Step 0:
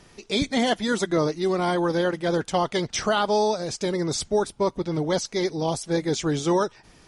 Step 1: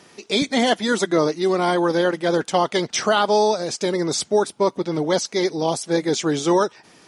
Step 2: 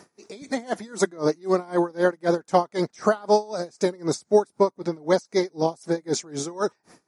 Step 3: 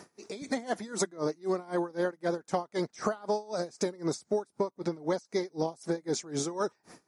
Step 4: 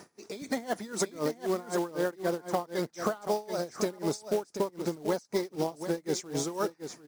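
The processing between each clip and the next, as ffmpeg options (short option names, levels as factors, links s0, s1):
-af "highpass=200,volume=1.68"
-af "equalizer=f=3100:w=1.9:g=-13.5,aeval=exprs='val(0)*pow(10,-27*(0.5-0.5*cos(2*PI*3.9*n/s))/20)':c=same,volume=1.26"
-af "acompressor=threshold=0.0447:ratio=6"
-af "aecho=1:1:734:0.335,acrusher=bits=4:mode=log:mix=0:aa=0.000001"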